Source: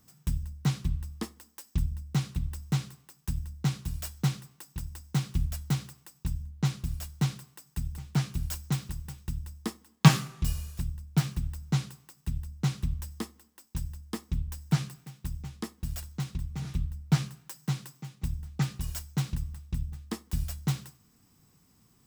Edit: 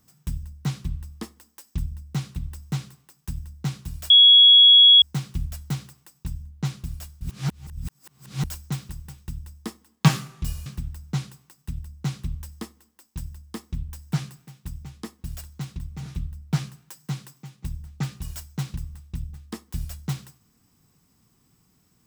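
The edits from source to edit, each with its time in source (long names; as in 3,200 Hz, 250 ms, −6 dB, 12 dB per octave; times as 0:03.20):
0:04.10–0:05.02: beep over 3,340 Hz −8.5 dBFS
0:07.21–0:08.44: reverse
0:10.66–0:11.25: remove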